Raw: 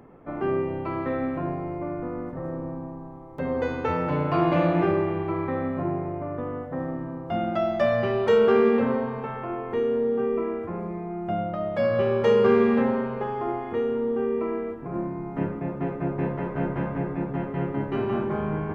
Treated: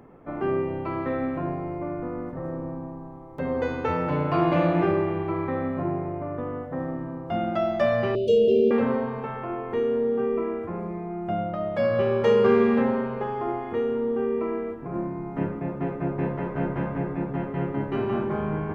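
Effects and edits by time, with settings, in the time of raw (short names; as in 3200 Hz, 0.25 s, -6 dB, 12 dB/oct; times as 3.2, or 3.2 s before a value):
8.15–8.71 Chebyshev band-stop 630–2700 Hz, order 5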